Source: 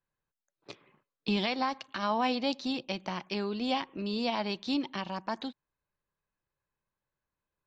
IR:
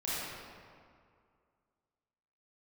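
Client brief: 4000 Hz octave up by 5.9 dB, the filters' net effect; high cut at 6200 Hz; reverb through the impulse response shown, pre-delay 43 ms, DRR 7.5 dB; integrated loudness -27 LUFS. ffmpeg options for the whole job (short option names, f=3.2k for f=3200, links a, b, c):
-filter_complex "[0:a]lowpass=6.2k,equalizer=f=4k:t=o:g=8,asplit=2[a][b];[1:a]atrim=start_sample=2205,adelay=43[c];[b][c]afir=irnorm=-1:irlink=0,volume=-13.5dB[d];[a][d]amix=inputs=2:normalize=0,volume=3dB"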